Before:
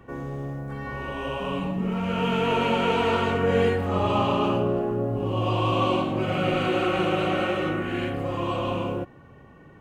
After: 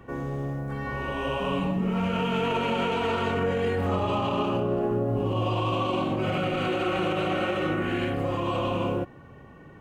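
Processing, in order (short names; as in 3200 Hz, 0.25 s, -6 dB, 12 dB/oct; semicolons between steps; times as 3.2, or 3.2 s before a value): limiter -19.5 dBFS, peak gain reduction 9.5 dB; gain +1.5 dB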